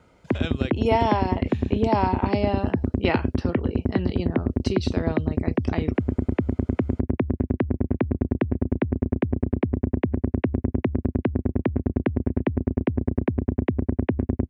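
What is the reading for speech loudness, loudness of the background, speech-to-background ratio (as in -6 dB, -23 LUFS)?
-28.5 LUFS, -25.5 LUFS, -3.0 dB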